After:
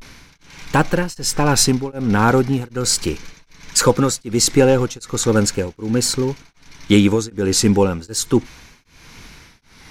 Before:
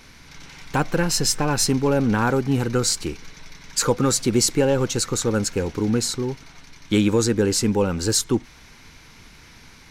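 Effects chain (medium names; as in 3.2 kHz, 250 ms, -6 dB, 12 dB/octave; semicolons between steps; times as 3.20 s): vibrato 0.37 Hz 60 cents; tremolo of two beating tones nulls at 1.3 Hz; trim +6.5 dB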